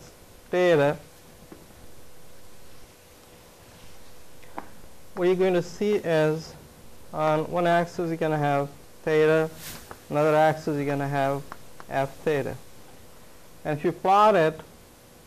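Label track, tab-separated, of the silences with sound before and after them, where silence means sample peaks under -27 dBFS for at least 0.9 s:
0.930000	4.580000	silence
12.520000	13.660000	silence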